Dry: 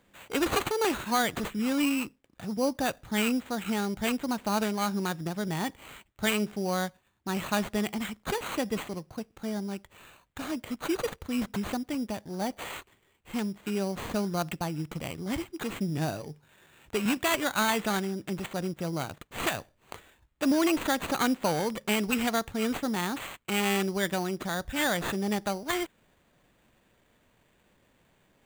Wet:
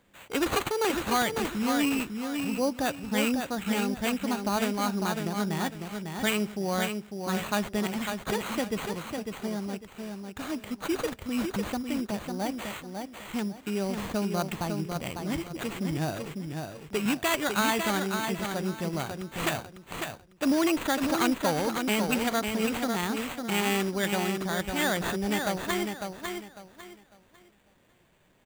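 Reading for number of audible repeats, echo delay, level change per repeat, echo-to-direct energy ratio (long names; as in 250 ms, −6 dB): 3, 550 ms, −11.5 dB, −5.0 dB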